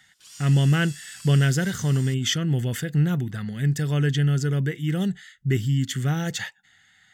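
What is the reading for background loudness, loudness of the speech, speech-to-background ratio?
-41.5 LUFS, -23.5 LUFS, 18.0 dB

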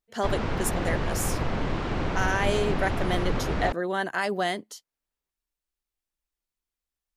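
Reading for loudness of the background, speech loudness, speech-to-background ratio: -30.0 LUFS, -29.5 LUFS, 0.5 dB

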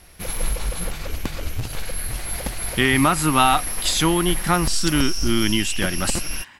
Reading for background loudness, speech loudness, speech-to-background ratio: -27.5 LUFS, -20.5 LUFS, 7.0 dB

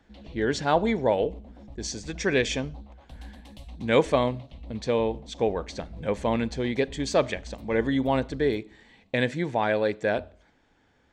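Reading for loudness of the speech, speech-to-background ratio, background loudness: -27.0 LUFS, 19.0 dB, -46.0 LUFS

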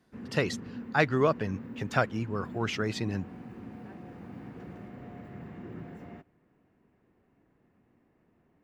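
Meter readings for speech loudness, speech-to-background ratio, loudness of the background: -30.5 LUFS, 13.5 dB, -44.0 LUFS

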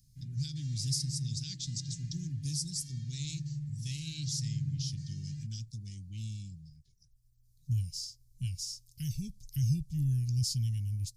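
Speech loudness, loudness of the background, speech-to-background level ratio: -36.5 LUFS, -41.5 LUFS, 5.0 dB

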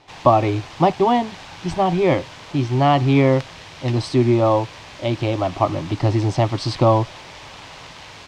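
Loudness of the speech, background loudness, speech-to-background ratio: -19.5 LUFS, -37.5 LUFS, 18.0 dB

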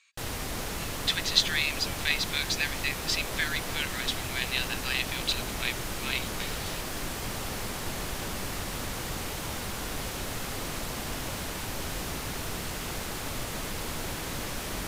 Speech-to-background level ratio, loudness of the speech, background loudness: 4.5 dB, -29.5 LUFS, -34.0 LUFS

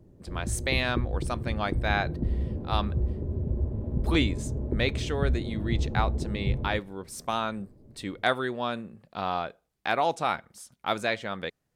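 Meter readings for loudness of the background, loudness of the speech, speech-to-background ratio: -31.5 LUFS, -31.0 LUFS, 0.5 dB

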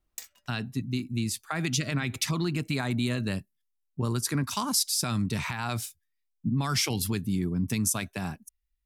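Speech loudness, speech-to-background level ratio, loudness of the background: -29.5 LUFS, 15.0 dB, -44.5 LUFS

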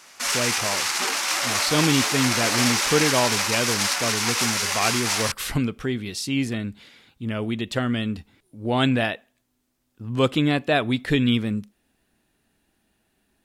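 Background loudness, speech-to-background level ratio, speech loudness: -22.0 LUFS, -3.0 dB, -25.0 LUFS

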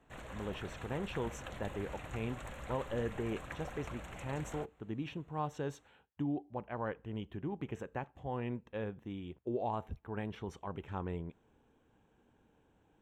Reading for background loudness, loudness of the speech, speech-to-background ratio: -47.5 LUFS, -41.0 LUFS, 6.5 dB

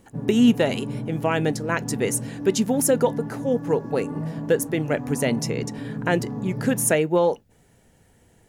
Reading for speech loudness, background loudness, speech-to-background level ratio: -23.5 LUFS, -32.0 LUFS, 8.5 dB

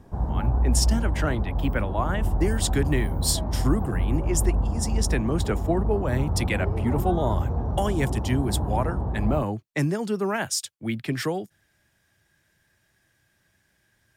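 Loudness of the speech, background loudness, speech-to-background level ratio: -28.0 LUFS, -27.5 LUFS, -0.5 dB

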